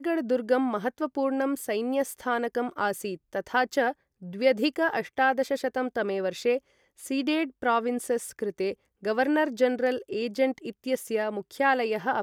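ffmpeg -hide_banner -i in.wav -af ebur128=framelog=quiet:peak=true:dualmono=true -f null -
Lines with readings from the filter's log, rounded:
Integrated loudness:
  I:         -24.7 LUFS
  Threshold: -34.8 LUFS
Loudness range:
  LRA:         1.8 LU
  Threshold: -44.9 LUFS
  LRA low:   -25.9 LUFS
  LRA high:  -24.0 LUFS
True peak:
  Peak:      -10.2 dBFS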